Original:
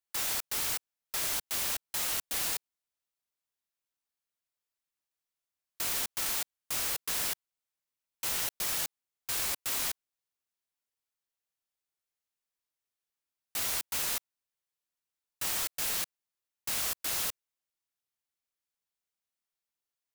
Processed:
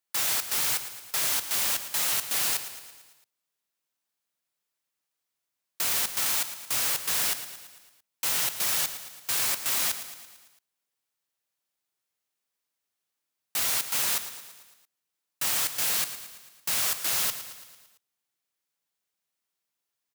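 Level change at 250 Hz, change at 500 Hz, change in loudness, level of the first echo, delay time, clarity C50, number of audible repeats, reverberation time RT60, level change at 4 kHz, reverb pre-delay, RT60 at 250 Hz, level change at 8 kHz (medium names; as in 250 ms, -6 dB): +2.5 dB, +3.5 dB, +5.5 dB, -12.0 dB, 112 ms, no reverb, 5, no reverb, +6.0 dB, no reverb, no reverb, +6.0 dB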